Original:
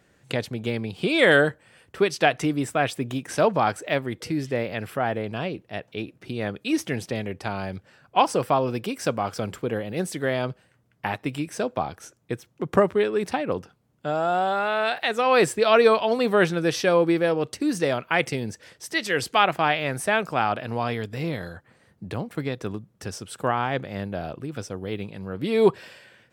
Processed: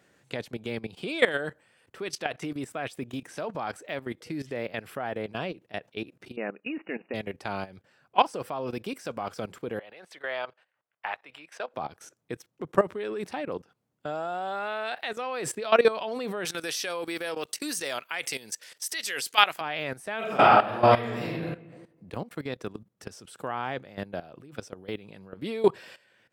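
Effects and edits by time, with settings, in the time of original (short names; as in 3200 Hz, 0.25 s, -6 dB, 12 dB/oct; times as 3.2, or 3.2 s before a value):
6.36–7.14 brick-wall FIR band-pass 180–2900 Hz
9.79–11.74 three-band isolator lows -23 dB, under 560 Hz, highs -16 dB, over 4000 Hz
16.45–19.61 tilt +4 dB/oct
20.18–21.28 reverb throw, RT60 1.1 s, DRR -10.5 dB
whole clip: HPF 190 Hz 6 dB/oct; level quantiser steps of 16 dB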